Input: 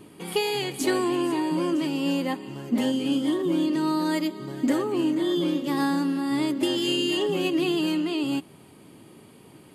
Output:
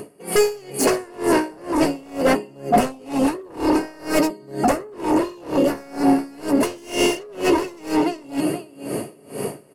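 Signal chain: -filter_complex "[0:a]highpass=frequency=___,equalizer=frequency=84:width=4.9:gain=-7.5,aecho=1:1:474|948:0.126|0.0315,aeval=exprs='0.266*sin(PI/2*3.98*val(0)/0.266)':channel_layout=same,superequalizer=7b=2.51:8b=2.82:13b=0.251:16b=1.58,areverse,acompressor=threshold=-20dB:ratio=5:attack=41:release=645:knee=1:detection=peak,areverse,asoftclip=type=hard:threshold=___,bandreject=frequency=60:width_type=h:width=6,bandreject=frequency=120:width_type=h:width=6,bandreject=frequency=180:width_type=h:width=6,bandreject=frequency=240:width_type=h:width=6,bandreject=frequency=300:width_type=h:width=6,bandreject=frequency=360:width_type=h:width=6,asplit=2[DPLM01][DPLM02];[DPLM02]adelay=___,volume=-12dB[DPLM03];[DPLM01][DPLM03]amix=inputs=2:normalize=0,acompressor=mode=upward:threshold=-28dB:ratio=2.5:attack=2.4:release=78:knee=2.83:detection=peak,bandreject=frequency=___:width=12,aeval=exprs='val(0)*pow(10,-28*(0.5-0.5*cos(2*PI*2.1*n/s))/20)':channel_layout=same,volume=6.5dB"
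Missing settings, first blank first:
57, -15.5dB, 14, 2400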